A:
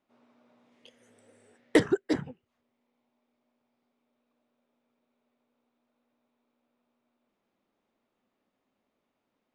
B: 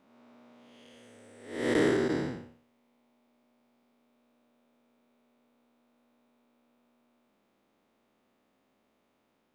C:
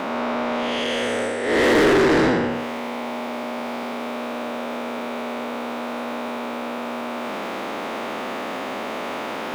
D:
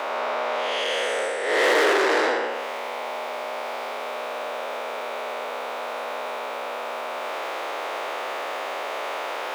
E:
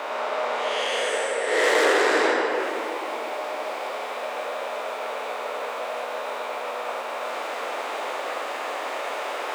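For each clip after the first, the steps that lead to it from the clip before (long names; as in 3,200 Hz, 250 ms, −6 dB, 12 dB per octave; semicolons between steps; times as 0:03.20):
spectrum smeared in time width 298 ms; level +8.5 dB
reversed playback; upward compression, threshold −38 dBFS; reversed playback; mid-hump overdrive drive 33 dB, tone 2,000 Hz, clips at −14 dBFS; level +5 dB
high-pass filter 450 Hz 24 dB per octave
rectangular room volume 140 cubic metres, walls hard, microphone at 0.41 metres; dynamic equaliser 7,900 Hz, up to +7 dB, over −52 dBFS, Q 1.9; level −3 dB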